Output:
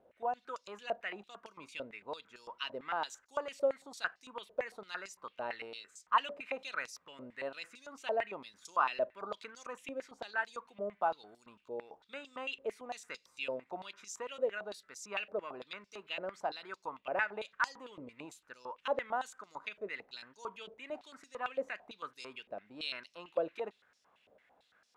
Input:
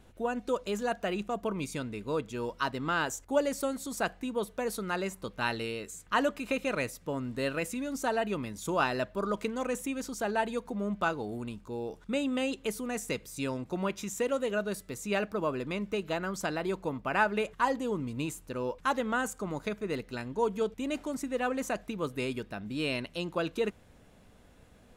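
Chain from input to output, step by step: on a send at -23.5 dB: reverberation RT60 0.45 s, pre-delay 30 ms; on the sum: step-sequenced band-pass 8.9 Hz 570–5300 Hz; trim +4 dB

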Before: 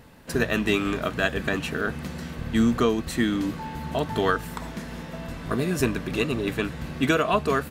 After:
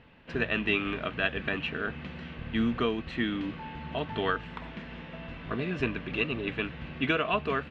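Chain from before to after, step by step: four-pole ladder low-pass 3.3 kHz, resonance 50%; trim +2.5 dB

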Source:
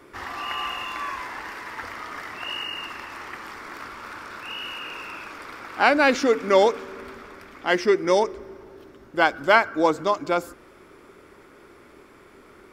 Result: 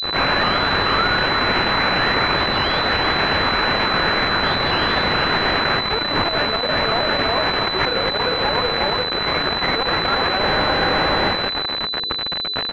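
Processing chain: sawtooth pitch modulation +8 st, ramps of 428 ms; on a send: feedback delay 362 ms, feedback 49%, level -11 dB; on the sum: rotary cabinet horn 8 Hz; in parallel at +2 dB: compression 8:1, threshold -35 dBFS, peak gain reduction 20 dB; on the sum: companded quantiser 2-bit; tilt EQ +4.5 dB/octave; hum notches 60/120/180/240/300/360/420/480 Hz; loudness maximiser +26.5 dB; spectral freeze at 10.43 s, 0.90 s; class-D stage that switches slowly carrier 4 kHz; trim -2.5 dB

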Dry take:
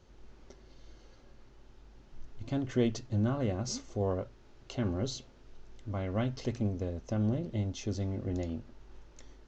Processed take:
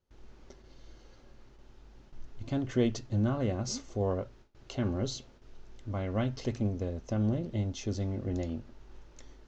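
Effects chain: gate with hold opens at -47 dBFS; trim +1 dB

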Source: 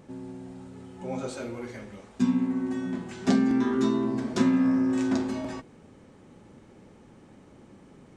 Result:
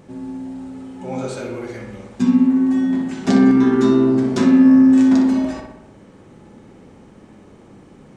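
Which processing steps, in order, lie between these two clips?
filtered feedback delay 61 ms, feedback 63%, low-pass 2.9 kHz, level -4 dB; trim +5.5 dB

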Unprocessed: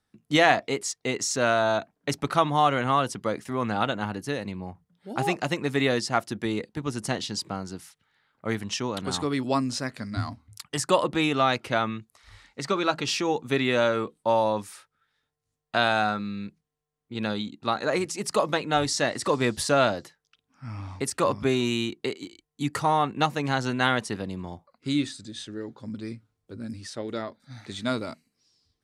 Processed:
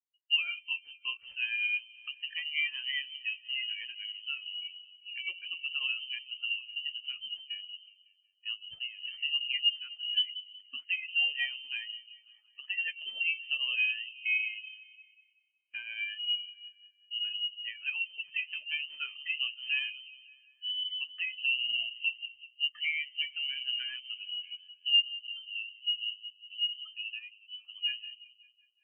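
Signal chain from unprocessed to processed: tracing distortion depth 0.39 ms; de-hum 89.53 Hz, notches 13; in parallel at +2 dB: peak limiter -13.5 dBFS, peak gain reduction 9 dB; on the sum: tremolo saw up 9.6 Hz, depth 35%; compression 3:1, threshold -30 dBFS, peak gain reduction 14 dB; on a send: delay with an opening low-pass 185 ms, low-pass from 400 Hz, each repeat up 1 oct, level -6 dB; on the sum: frequency inversion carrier 3.1 kHz; spectral contrast expander 2.5:1; trim -5 dB

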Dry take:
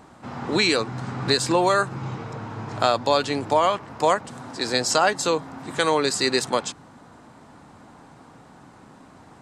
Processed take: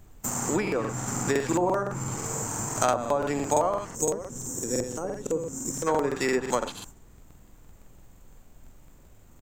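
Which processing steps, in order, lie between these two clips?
gate -41 dBFS, range -26 dB; delay 90 ms -9 dB; careless resampling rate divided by 6×, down filtered, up zero stuff; in parallel at +0.5 dB: compression, threshold -21 dBFS, peak gain reduction 16.5 dB; on the sum: low-pass that closes with the level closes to 900 Hz, closed at -5 dBFS; time-frequency box 3.91–5.87 s, 560–5100 Hz -14 dB; added noise brown -44 dBFS; crackling interface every 0.17 s, samples 2048, repeat, from 0.63 s; trim -5.5 dB

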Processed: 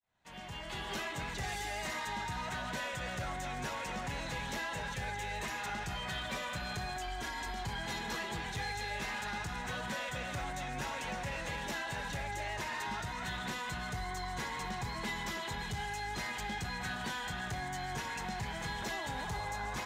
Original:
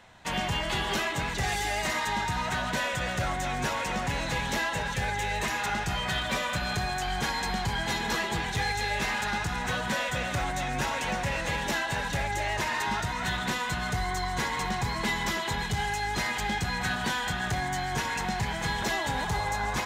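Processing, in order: fade-in on the opening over 1.74 s; 6.96–7.64 s: comb 3 ms, depth 74%; peak limiter -27 dBFS, peak gain reduction 9 dB; trim -4.5 dB

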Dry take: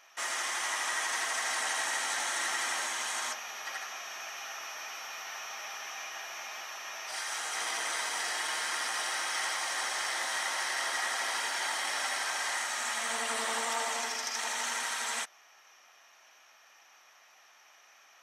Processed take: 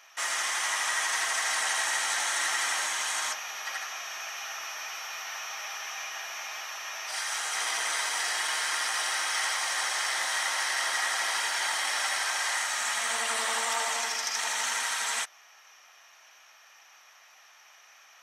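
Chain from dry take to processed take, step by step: bass shelf 440 Hz -11 dB; trim +4.5 dB

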